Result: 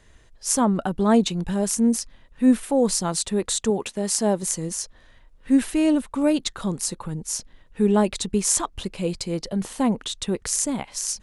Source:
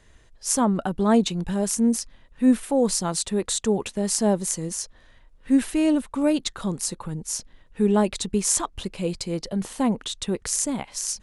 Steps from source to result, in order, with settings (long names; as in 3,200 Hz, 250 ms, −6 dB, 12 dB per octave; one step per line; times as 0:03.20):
0:03.70–0:04.43: low-shelf EQ 140 Hz −9 dB
level +1 dB